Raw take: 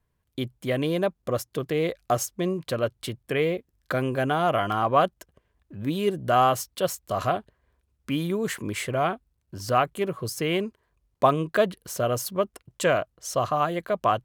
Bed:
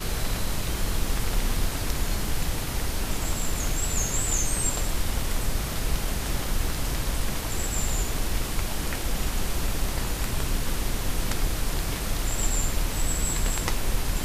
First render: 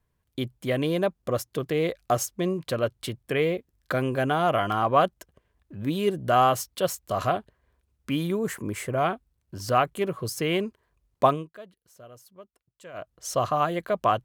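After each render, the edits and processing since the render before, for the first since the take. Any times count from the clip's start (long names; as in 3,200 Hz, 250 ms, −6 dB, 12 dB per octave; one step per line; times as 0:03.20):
0:08.39–0:08.98: parametric band 3,500 Hz −9.5 dB 1.4 octaves
0:11.26–0:13.16: duck −22.5 dB, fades 0.23 s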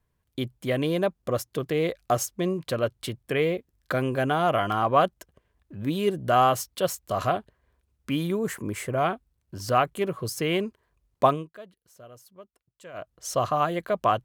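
no processing that can be heard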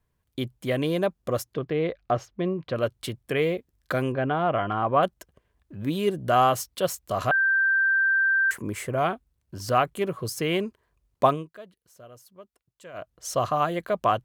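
0:01.54–0:02.76: high-frequency loss of the air 250 metres
0:04.12–0:05.03: high-frequency loss of the air 330 metres
0:07.31–0:08.51: beep over 1,570 Hz −18.5 dBFS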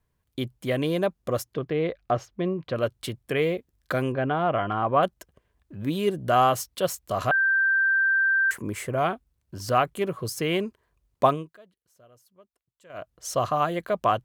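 0:11.56–0:12.90: clip gain −8 dB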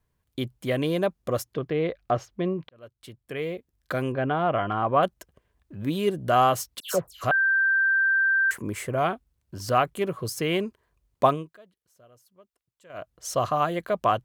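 0:02.69–0:04.28: fade in
0:06.80–0:07.24: all-pass dispersion lows, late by 139 ms, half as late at 2,100 Hz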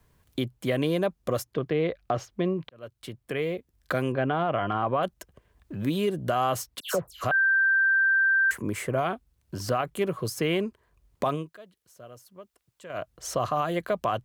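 brickwall limiter −17 dBFS, peak gain reduction 11 dB
multiband upward and downward compressor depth 40%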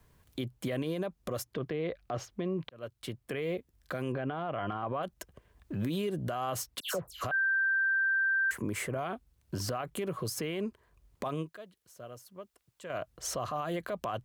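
downward compressor 2.5 to 1, threshold −27 dBFS, peak gain reduction 4.5 dB
brickwall limiter −25 dBFS, peak gain reduction 9.5 dB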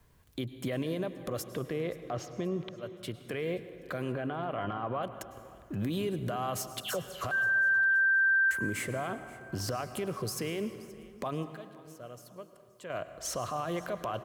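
repeating echo 526 ms, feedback 40%, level −21 dB
dense smooth reverb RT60 2.2 s, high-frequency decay 0.6×, pre-delay 90 ms, DRR 11 dB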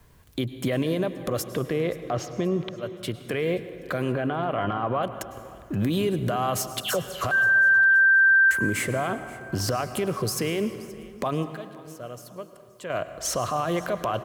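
level +8 dB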